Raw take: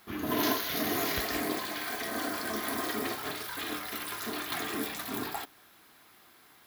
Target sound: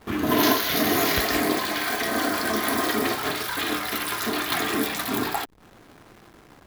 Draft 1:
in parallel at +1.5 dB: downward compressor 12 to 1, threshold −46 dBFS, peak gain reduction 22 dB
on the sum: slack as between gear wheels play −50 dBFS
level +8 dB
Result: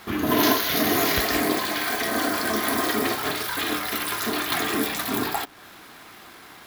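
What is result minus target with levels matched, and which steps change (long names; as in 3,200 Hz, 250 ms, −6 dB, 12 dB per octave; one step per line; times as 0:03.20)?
slack as between gear wheels: distortion −9 dB
change: slack as between gear wheels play −40.5 dBFS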